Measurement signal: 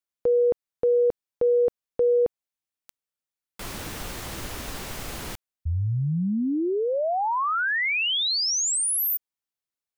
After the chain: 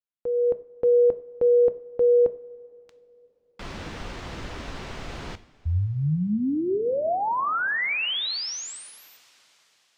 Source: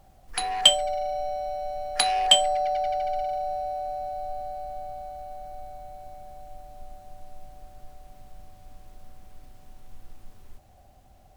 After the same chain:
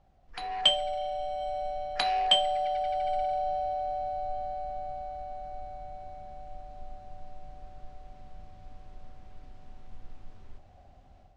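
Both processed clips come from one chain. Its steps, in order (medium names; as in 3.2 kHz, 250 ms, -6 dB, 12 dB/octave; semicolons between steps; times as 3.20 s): distance through air 140 m; level rider gain up to 8.5 dB; two-slope reverb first 0.42 s, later 4.2 s, from -18 dB, DRR 11.5 dB; trim -8.5 dB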